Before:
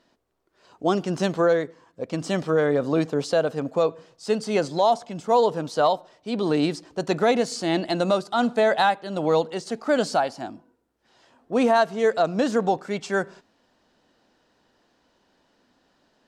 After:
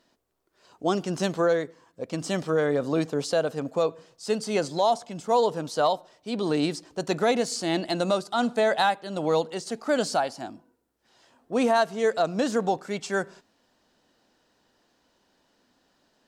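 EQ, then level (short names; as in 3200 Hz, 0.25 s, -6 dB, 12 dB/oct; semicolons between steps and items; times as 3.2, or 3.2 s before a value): high shelf 5900 Hz +8.5 dB; -3.0 dB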